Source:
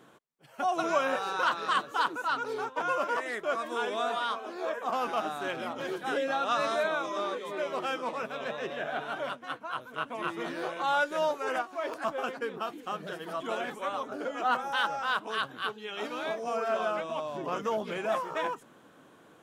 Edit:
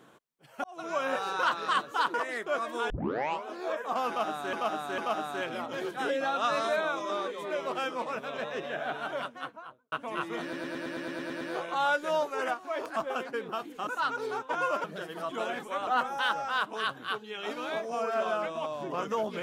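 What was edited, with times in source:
0:00.64–0:01.17: fade in
0:02.14–0:03.11: move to 0:12.95
0:03.87: tape start 0.56 s
0:05.05–0:05.50: repeat, 3 plays
0:09.39–0:09.99: fade out and dull
0:10.49: stutter 0.11 s, 10 plays
0:13.98–0:14.41: remove

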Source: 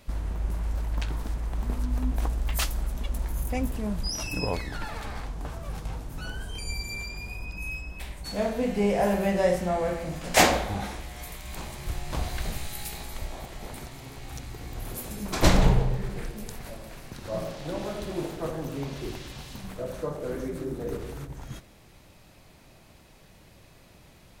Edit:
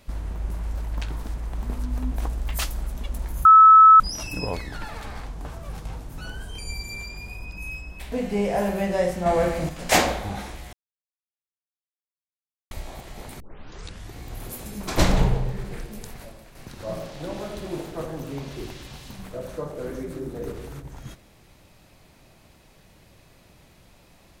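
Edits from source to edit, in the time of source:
0:03.45–0:04.00: beep over 1,300 Hz −7 dBFS
0:08.12–0:08.57: remove
0:09.71–0:10.14: clip gain +6.5 dB
0:11.18–0:13.16: silence
0:13.85: tape start 0.75 s
0:16.57–0:17.00: fade out, to −8 dB

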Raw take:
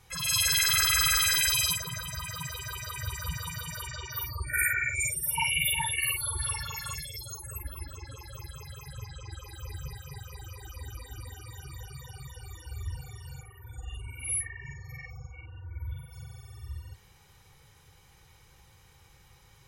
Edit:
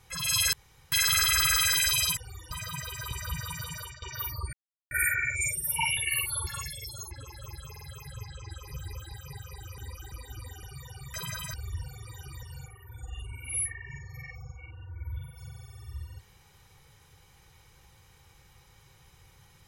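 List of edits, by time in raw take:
0:00.53: splice in room tone 0.39 s
0:01.78–0:02.18: swap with 0:12.33–0:12.67
0:02.78–0:03.08: remove
0:03.61–0:03.99: fade out equal-power, to −16 dB
0:04.50: splice in silence 0.38 s
0:05.56–0:05.88: remove
0:06.38–0:06.79: remove
0:07.43–0:08.02: remove
0:08.62: stutter 0.05 s, 3 plays
0:09.51–0:09.92: reverse
0:10.59–0:10.93: reverse
0:11.44–0:11.82: move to 0:13.18

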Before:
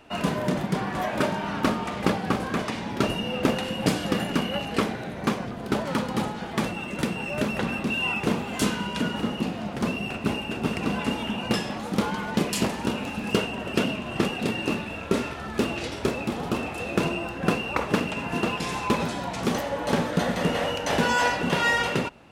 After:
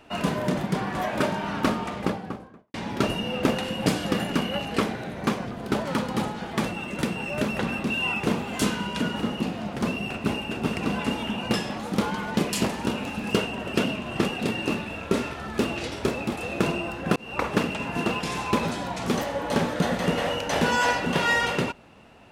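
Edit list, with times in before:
0:01.72–0:02.74: fade out and dull
0:16.36–0:16.73: remove
0:17.53–0:17.79: fade in

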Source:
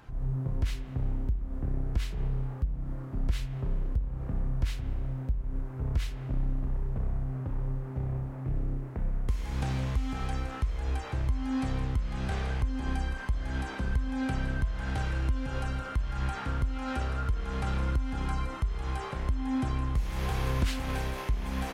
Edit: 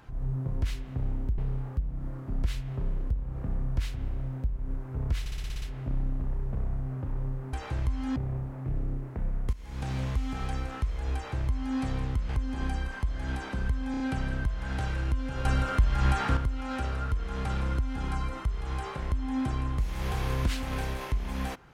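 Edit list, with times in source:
0:01.38–0:02.23: remove
0:06.05: stutter 0.06 s, 8 plays
0:09.33–0:09.81: fade in, from −14.5 dB
0:10.95–0:11.58: duplicate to 0:07.96
0:12.09–0:12.55: remove
0:14.17: stutter 0.03 s, 4 plays
0:15.62–0:16.54: clip gain +7 dB

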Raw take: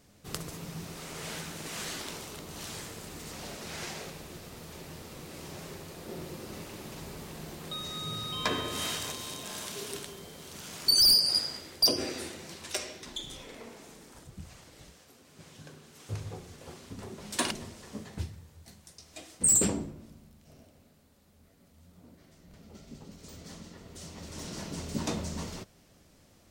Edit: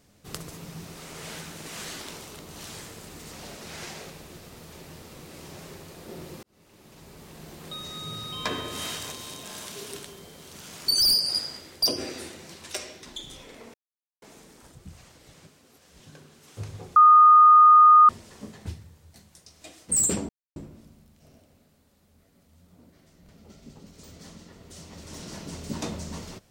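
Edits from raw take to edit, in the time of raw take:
0:06.43–0:07.69: fade in
0:13.74: splice in silence 0.48 s
0:14.86–0:15.52: reverse
0:16.48–0:17.61: beep over 1,230 Hz −10 dBFS
0:19.81: splice in silence 0.27 s

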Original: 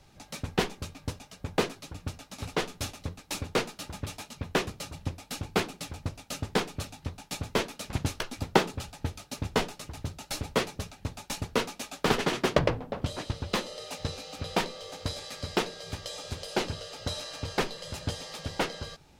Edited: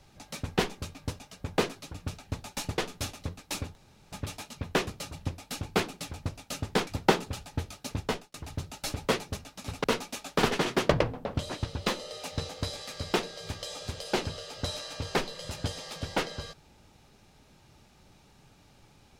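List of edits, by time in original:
0:02.11–0:02.58: swap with 0:10.84–0:11.51
0:03.55–0:03.92: fill with room tone
0:06.67–0:08.34: remove
0:09.43–0:09.81: fade out
0:14.16–0:14.92: remove

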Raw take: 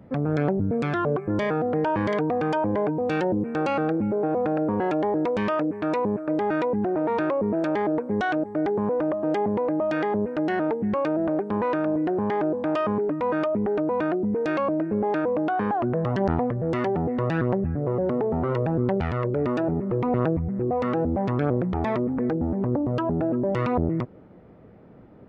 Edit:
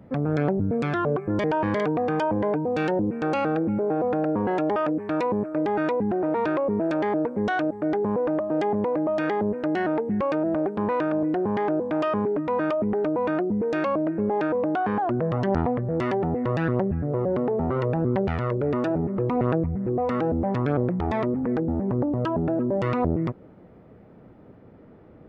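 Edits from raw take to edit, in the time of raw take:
0:01.44–0:01.77: remove
0:05.09–0:05.49: remove

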